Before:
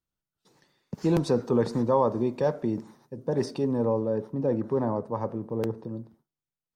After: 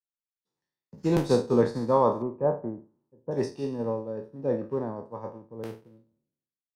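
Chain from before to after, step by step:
peak hold with a decay on every bin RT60 0.77 s
0:02.22–0:03.31: low-pass filter 1,300 Hz 24 dB per octave
expander for the loud parts 2.5 to 1, over −39 dBFS
level +2.5 dB

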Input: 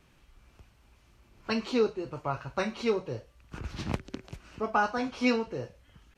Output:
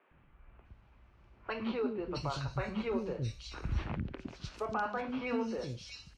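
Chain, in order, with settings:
low-pass that shuts in the quiet parts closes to 2,200 Hz, open at −26.5 dBFS
0:01.92–0:03.72: low-shelf EQ 110 Hz +11.5 dB
brickwall limiter −24 dBFS, peak gain reduction 10 dB
three-band delay without the direct sound mids, lows, highs 110/650 ms, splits 330/3,200 Hz

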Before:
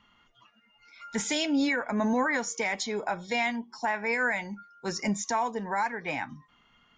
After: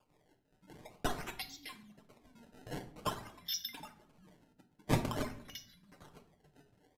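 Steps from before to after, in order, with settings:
slices reordered back to front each 87 ms, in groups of 4
meter weighting curve A
treble cut that deepens with the level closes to 1,600 Hz, closed at −27.5 dBFS
inverse Chebyshev band-stop filter 550–1,400 Hz, stop band 80 dB
flat-topped bell 4,500 Hz +14 dB
tuned comb filter 660 Hz, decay 0.19 s, harmonics all, mix 90%
sample-and-hold swept by an LFO 22×, swing 160% 0.49 Hz
on a send at −7 dB: convolution reverb RT60 0.65 s, pre-delay 7 ms
on the sum: downsampling to 32,000 Hz
level +14 dB

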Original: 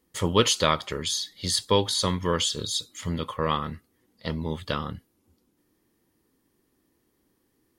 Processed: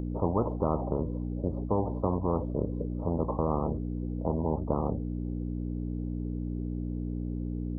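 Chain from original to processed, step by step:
mains hum 60 Hz, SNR 12 dB
Gaussian smoothing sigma 18 samples
every bin compressed towards the loudest bin 4 to 1

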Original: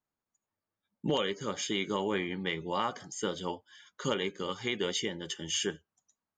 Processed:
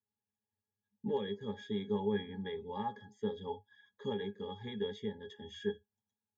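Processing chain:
resonances in every octave G#, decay 0.11 s
level +4.5 dB

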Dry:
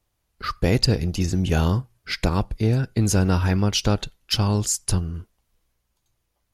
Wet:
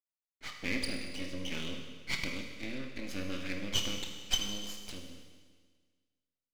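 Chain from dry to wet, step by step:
octave-band graphic EQ 1,000/2,000/4,000 Hz +6/+6/+8 dB
downward expander −42 dBFS
formant filter i
low-shelf EQ 280 Hz −11 dB
half-wave rectification
convolution reverb RT60 1.6 s, pre-delay 24 ms, DRR 2.5 dB
level +1.5 dB

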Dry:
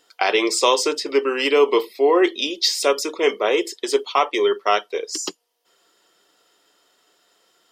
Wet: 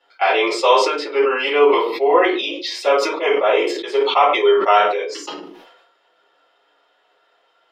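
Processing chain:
three-way crossover with the lows and the highs turned down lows −19 dB, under 390 Hz, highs −23 dB, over 3,300 Hz
rectangular room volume 120 cubic metres, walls furnished, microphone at 4.1 metres
level that may fall only so fast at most 51 dB per second
level −5 dB

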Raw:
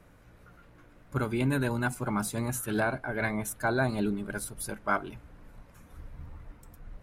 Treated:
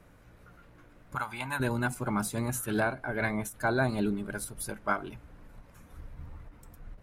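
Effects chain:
0:01.15–0:01.60: low shelf with overshoot 590 Hz −12.5 dB, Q 3
every ending faded ahead of time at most 210 dB per second

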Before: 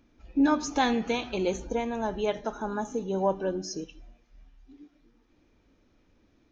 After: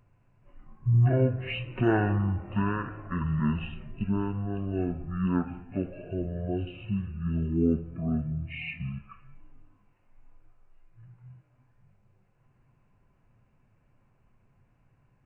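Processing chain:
wrong playback speed 78 rpm record played at 33 rpm

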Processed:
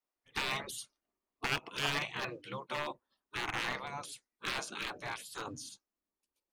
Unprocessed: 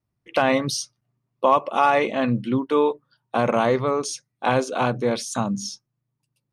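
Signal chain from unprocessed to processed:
0:02.19–0:02.91: high-pass filter 160 Hz 12 dB per octave
wave folding −12 dBFS
gate on every frequency bin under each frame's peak −15 dB weak
level −5 dB

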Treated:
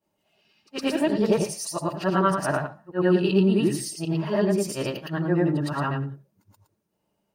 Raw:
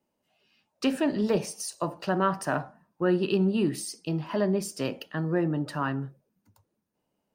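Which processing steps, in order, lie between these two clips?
every overlapping window played backwards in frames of 232 ms
notch comb filter 250 Hz
level +8 dB

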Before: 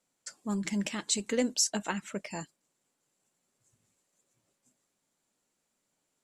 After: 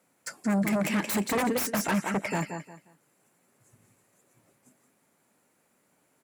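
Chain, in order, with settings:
repeating echo 176 ms, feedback 25%, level −10.5 dB
in parallel at −5 dB: sine wavefolder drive 18 dB, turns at −13.5 dBFS
on the sum: high-pass filter 81 Hz
flat-topped bell 4,900 Hz −9 dB
level −5 dB

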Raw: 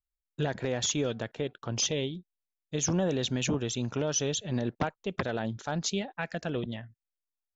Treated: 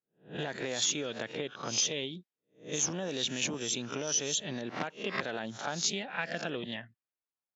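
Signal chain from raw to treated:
peak hold with a rise ahead of every peak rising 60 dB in 0.33 s
low-pass that shuts in the quiet parts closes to 1,500 Hz, open at −26 dBFS
downward compressor, threshold −32 dBFS, peak gain reduction 9 dB
dynamic equaliser 2,200 Hz, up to +4 dB, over −54 dBFS, Q 0.82
high-pass filter 180 Hz 12 dB per octave
high-shelf EQ 3,500 Hz +7 dB

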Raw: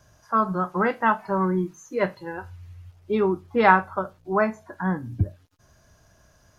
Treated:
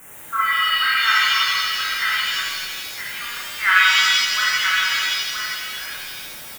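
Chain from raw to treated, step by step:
Butterworth high-pass 1,300 Hz 48 dB per octave
bit-depth reduction 8 bits, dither triangular
Butterworth band-reject 4,400 Hz, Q 0.85
on a send: single-tap delay 972 ms −7 dB
on the sum: reverb with rising layers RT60 1.6 s, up +7 semitones, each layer −2 dB, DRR −6.5 dB
level +3 dB

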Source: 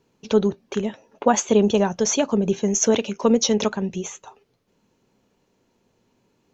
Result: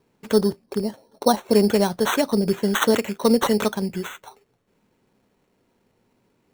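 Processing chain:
0:00.64–0:01.53: low-pass filter 1,400 Hz 12 dB per octave
decimation without filtering 9×

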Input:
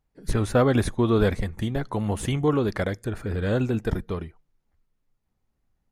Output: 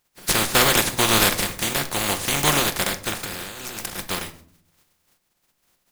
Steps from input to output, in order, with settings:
compressing power law on the bin magnitudes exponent 0.22
0:03.23–0:03.99: compressor whose output falls as the input rises −36 dBFS, ratio −1
rectangular room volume 750 cubic metres, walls furnished, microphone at 0.89 metres
level +2 dB

